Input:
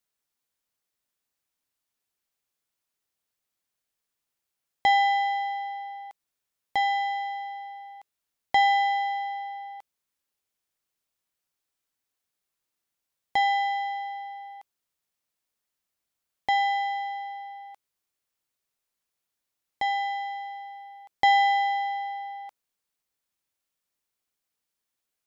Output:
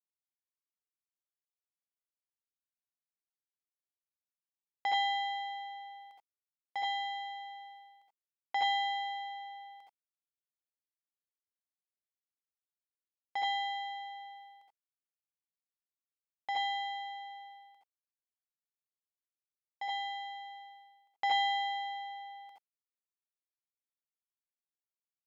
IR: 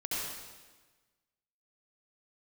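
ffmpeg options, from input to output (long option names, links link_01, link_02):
-filter_complex "[0:a]agate=range=-33dB:threshold=-38dB:ratio=3:detection=peak[link_01];[1:a]atrim=start_sample=2205,atrim=end_sample=3969[link_02];[link_01][link_02]afir=irnorm=-1:irlink=0,volume=-8dB"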